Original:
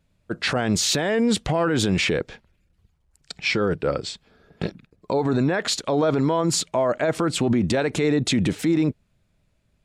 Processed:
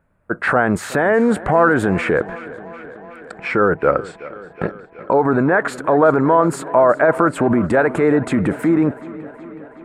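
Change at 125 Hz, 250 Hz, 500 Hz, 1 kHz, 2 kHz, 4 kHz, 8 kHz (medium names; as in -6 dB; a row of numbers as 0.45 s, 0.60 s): +1.5 dB, +4.5 dB, +8.0 dB, +11.0 dB, +8.0 dB, under -10 dB, -9.0 dB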